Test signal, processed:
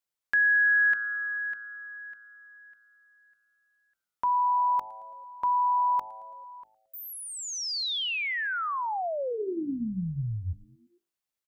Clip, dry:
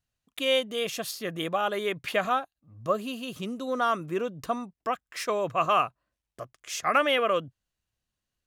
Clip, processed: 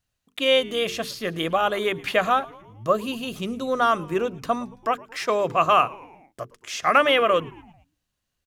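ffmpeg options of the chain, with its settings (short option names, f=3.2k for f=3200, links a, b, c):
-filter_complex "[0:a]bandreject=f=50:t=h:w=6,bandreject=f=100:t=h:w=6,bandreject=f=150:t=h:w=6,bandreject=f=200:t=h:w=6,bandreject=f=250:t=h:w=6,bandreject=f=300:t=h:w=6,bandreject=f=350:t=h:w=6,bandreject=f=400:t=h:w=6,bandreject=f=450:t=h:w=6,acrossover=split=5400[a][b];[b]acompressor=threshold=-47dB:ratio=4:attack=1:release=60[c];[a][c]amix=inputs=2:normalize=0,asplit=5[d][e][f][g][h];[e]adelay=111,afreqshift=-110,volume=-22.5dB[i];[f]adelay=222,afreqshift=-220,volume=-27.1dB[j];[g]adelay=333,afreqshift=-330,volume=-31.7dB[k];[h]adelay=444,afreqshift=-440,volume=-36.2dB[l];[d][i][j][k][l]amix=inputs=5:normalize=0,volume=5.5dB"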